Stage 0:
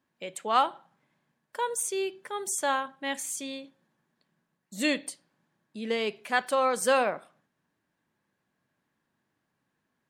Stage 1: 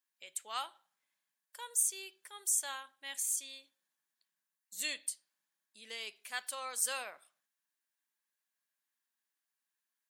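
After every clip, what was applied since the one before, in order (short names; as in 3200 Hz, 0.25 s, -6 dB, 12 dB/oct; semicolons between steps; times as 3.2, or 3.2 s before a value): differentiator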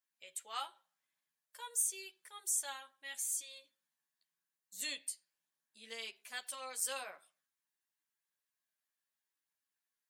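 chorus voices 2, 0.42 Hz, delay 12 ms, depth 1.2 ms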